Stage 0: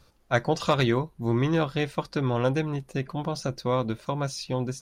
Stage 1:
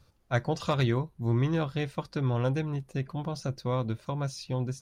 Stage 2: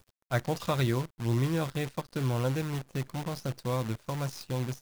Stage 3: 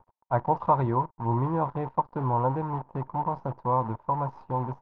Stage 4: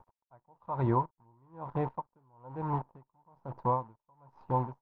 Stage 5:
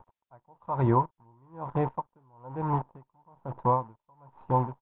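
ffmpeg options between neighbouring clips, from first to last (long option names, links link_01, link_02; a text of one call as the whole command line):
ffmpeg -i in.wav -af "equalizer=frequency=100:width=1.1:gain=8.5,volume=-6dB" out.wav
ffmpeg -i in.wav -af "acrusher=bits=7:dc=4:mix=0:aa=0.000001,volume=-1.5dB" out.wav
ffmpeg -i in.wav -af "lowpass=frequency=930:width_type=q:width=10" out.wav
ffmpeg -i in.wav -af "aeval=exprs='val(0)*pow(10,-39*(0.5-0.5*cos(2*PI*1.1*n/s))/20)':channel_layout=same" out.wav
ffmpeg -i in.wav -af "aresample=8000,aresample=44100,volume=4.5dB" out.wav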